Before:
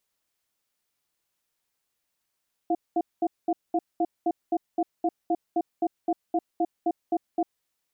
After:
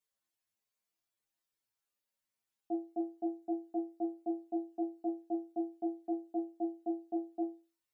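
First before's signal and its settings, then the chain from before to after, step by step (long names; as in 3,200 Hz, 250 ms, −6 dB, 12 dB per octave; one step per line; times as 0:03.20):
tone pair in a cadence 332 Hz, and 706 Hz, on 0.05 s, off 0.21 s, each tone −23.5 dBFS 4.78 s
stiff-string resonator 110 Hz, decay 0.33 s, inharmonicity 0.002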